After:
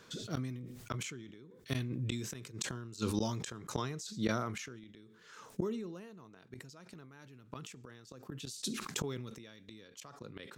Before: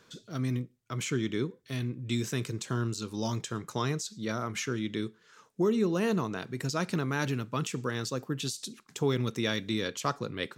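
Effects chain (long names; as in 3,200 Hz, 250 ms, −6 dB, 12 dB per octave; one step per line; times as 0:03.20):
gate with flip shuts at −24 dBFS, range −28 dB
level that may fall only so fast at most 40 dB per second
level +2.5 dB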